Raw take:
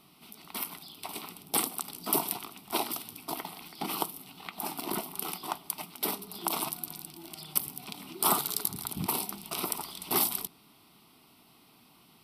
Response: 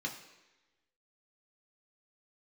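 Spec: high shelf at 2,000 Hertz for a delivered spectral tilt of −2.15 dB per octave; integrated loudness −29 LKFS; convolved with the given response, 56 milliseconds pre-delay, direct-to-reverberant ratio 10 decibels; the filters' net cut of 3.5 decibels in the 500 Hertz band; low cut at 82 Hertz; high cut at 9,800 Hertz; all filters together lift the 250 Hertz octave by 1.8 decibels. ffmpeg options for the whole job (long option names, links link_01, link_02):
-filter_complex "[0:a]highpass=82,lowpass=9800,equalizer=frequency=250:width_type=o:gain=5,equalizer=frequency=500:width_type=o:gain=-8,highshelf=frequency=2000:gain=3,asplit=2[link_01][link_02];[1:a]atrim=start_sample=2205,adelay=56[link_03];[link_02][link_03]afir=irnorm=-1:irlink=0,volume=-12dB[link_04];[link_01][link_04]amix=inputs=2:normalize=0,volume=4.5dB"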